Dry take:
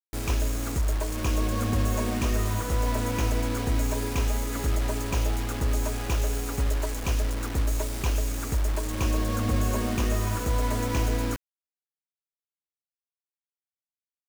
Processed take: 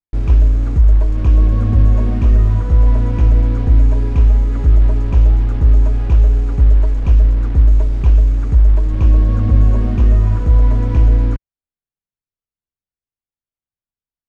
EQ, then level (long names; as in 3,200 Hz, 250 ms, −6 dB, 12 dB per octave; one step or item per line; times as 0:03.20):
high-frequency loss of the air 65 metres
RIAA equalisation playback
0.0 dB